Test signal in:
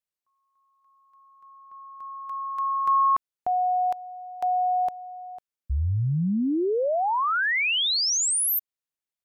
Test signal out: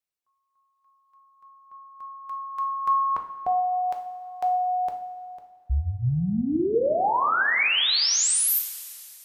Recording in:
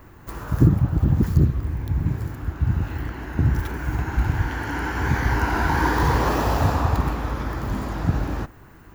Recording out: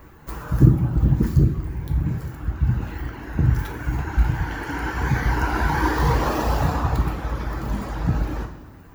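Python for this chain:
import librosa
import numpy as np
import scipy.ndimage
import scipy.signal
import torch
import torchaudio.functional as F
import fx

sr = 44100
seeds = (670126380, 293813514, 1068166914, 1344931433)

y = fx.dereverb_blind(x, sr, rt60_s=1.1)
y = fx.rev_double_slope(y, sr, seeds[0], early_s=0.52, late_s=2.6, knee_db=-13, drr_db=3.0)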